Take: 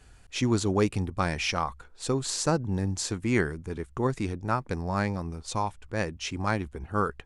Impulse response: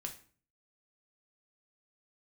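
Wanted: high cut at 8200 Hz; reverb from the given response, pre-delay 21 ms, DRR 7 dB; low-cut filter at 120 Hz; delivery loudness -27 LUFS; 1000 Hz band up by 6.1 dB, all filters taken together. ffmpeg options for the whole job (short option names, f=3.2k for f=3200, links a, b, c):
-filter_complex "[0:a]highpass=120,lowpass=8.2k,equalizer=f=1k:t=o:g=7.5,asplit=2[a][b];[1:a]atrim=start_sample=2205,adelay=21[c];[b][c]afir=irnorm=-1:irlink=0,volume=-5dB[d];[a][d]amix=inputs=2:normalize=0"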